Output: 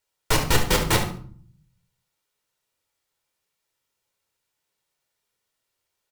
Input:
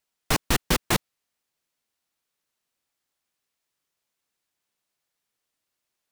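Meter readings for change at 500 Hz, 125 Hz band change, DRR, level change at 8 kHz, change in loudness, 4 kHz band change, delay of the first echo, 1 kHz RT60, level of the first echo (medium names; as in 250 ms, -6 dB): +5.0 dB, +5.0 dB, 2.0 dB, +2.5 dB, +2.5 dB, +3.0 dB, 71 ms, 0.50 s, -11.5 dB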